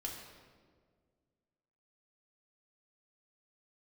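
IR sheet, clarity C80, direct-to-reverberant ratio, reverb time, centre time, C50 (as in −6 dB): 5.0 dB, −1.5 dB, 1.8 s, 55 ms, 3.5 dB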